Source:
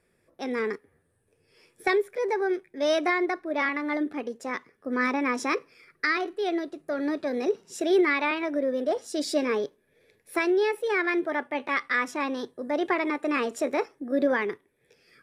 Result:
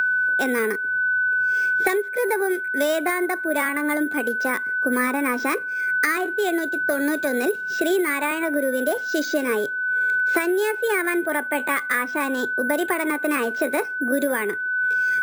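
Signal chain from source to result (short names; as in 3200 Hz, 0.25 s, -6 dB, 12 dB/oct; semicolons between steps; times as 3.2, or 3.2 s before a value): careless resampling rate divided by 4×, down filtered, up hold; whine 1500 Hz -32 dBFS; three-band squash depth 100%; gain +3 dB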